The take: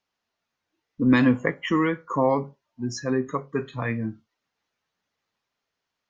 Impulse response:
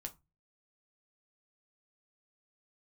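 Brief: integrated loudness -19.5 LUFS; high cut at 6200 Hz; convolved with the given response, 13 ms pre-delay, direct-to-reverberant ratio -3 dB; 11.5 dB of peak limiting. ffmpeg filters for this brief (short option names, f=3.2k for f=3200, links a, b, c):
-filter_complex "[0:a]lowpass=6.2k,alimiter=limit=-18.5dB:level=0:latency=1,asplit=2[a][b];[1:a]atrim=start_sample=2205,adelay=13[c];[b][c]afir=irnorm=-1:irlink=0,volume=6.5dB[d];[a][d]amix=inputs=2:normalize=0,volume=5.5dB"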